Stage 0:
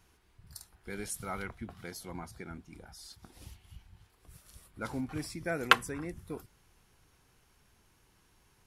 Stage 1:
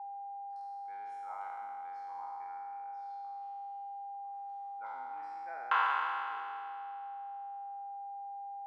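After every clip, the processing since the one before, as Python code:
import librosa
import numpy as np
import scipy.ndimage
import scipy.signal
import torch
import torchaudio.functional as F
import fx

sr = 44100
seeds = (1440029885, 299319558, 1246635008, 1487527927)

y = fx.spec_trails(x, sr, decay_s=2.52)
y = y + 10.0 ** (-34.0 / 20.0) * np.sin(2.0 * np.pi * 800.0 * np.arange(len(y)) / sr)
y = fx.ladder_bandpass(y, sr, hz=980.0, resonance_pct=70)
y = y * librosa.db_to_amplitude(-2.0)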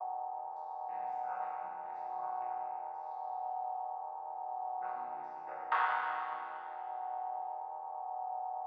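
y = fx.chord_vocoder(x, sr, chord='major triad', root=47)
y = fx.rider(y, sr, range_db=4, speed_s=2.0)
y = y * librosa.db_to_amplitude(1.0)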